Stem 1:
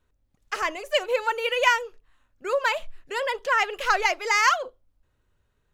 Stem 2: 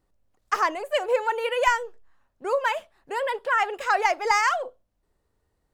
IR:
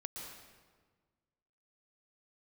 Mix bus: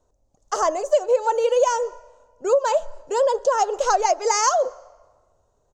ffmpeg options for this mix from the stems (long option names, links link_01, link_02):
-filter_complex "[0:a]firequalizer=gain_entry='entry(240,0);entry(630,14);entry(1900,-16);entry(6500,12);entry(14000,-27)':delay=0.05:min_phase=1,volume=1.5dB,asplit=2[link_01][link_02];[link_02]volume=-22.5dB[link_03];[1:a]bandreject=frequency=59.58:width_type=h:width=4,bandreject=frequency=119.16:width_type=h:width=4,bandreject=frequency=178.74:width_type=h:width=4,bandreject=frequency=238.32:width_type=h:width=4,bandreject=frequency=297.9:width_type=h:width=4,bandreject=frequency=357.48:width_type=h:width=4,bandreject=frequency=417.06:width_type=h:width=4,bandreject=frequency=476.64:width_type=h:width=4,bandreject=frequency=536.22:width_type=h:width=4,bandreject=frequency=595.8:width_type=h:width=4,bandreject=frequency=655.38:width_type=h:width=4,bandreject=frequency=714.96:width_type=h:width=4,bandreject=frequency=774.54:width_type=h:width=4,bandreject=frequency=834.12:width_type=h:width=4,bandreject=frequency=893.7:width_type=h:width=4,bandreject=frequency=953.28:width_type=h:width=4,bandreject=frequency=1012.86:width_type=h:width=4,bandreject=frequency=1072.44:width_type=h:width=4,bandreject=frequency=1132.02:width_type=h:width=4,bandreject=frequency=1191.6:width_type=h:width=4,bandreject=frequency=1251.18:width_type=h:width=4,bandreject=frequency=1310.76:width_type=h:width=4,bandreject=frequency=1370.34:width_type=h:width=4,bandreject=frequency=1429.92:width_type=h:width=4,bandreject=frequency=1489.5:width_type=h:width=4,bandreject=frequency=1549.08:width_type=h:width=4,bandreject=frequency=1608.66:width_type=h:width=4,bandreject=frequency=1668.24:width_type=h:width=4,bandreject=frequency=1727.82:width_type=h:width=4,bandreject=frequency=1787.4:width_type=h:width=4,bandreject=frequency=1846.98:width_type=h:width=4,bandreject=frequency=1906.56:width_type=h:width=4,volume=-10dB[link_04];[2:a]atrim=start_sample=2205[link_05];[link_03][link_05]afir=irnorm=-1:irlink=0[link_06];[link_01][link_04][link_06]amix=inputs=3:normalize=0,acompressor=threshold=-15dB:ratio=5"